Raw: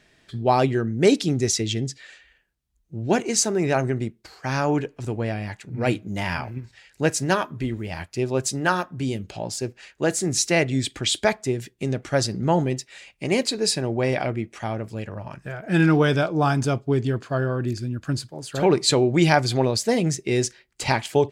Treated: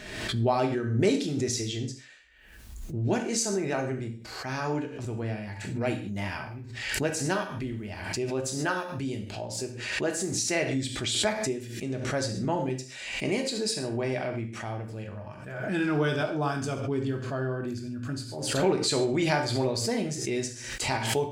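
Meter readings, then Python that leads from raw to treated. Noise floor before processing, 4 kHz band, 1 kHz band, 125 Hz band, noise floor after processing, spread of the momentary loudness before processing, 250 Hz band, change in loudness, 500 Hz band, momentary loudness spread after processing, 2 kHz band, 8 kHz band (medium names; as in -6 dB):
-63 dBFS, -4.5 dB, -7.0 dB, -7.0 dB, -44 dBFS, 13 LU, -6.0 dB, -6.0 dB, -6.0 dB, 10 LU, -5.0 dB, -5.0 dB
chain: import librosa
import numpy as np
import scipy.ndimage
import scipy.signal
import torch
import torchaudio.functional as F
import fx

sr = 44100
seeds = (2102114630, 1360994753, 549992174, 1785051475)

p1 = x + fx.room_flutter(x, sr, wall_m=11.9, rt60_s=0.27, dry=0)
p2 = fx.rev_gated(p1, sr, seeds[0], gate_ms=170, shape='falling', drr_db=3.0)
p3 = fx.pre_swell(p2, sr, db_per_s=47.0)
y = p3 * 10.0 ** (-9.0 / 20.0)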